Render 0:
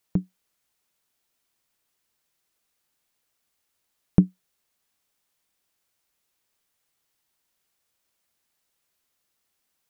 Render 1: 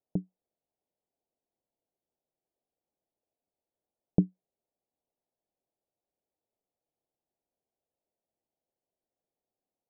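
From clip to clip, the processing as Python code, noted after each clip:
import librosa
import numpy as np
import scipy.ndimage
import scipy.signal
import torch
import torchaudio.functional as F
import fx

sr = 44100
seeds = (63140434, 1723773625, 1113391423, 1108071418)

y = scipy.signal.sosfilt(scipy.signal.butter(6, 750.0, 'lowpass', fs=sr, output='sos'), x)
y = fx.low_shelf(y, sr, hz=240.0, db=-11.0)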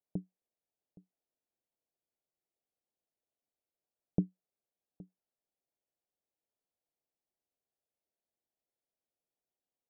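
y = x + 10.0 ** (-21.5 / 20.0) * np.pad(x, (int(818 * sr / 1000.0), 0))[:len(x)]
y = y * librosa.db_to_amplitude(-6.5)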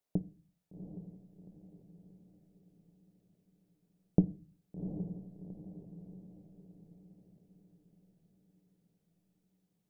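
y = fx.echo_diffused(x, sr, ms=759, feedback_pct=47, wet_db=-8.5)
y = fx.room_shoebox(y, sr, seeds[0], volume_m3=180.0, walls='furnished', distance_m=0.31)
y = y * librosa.db_to_amplitude(5.0)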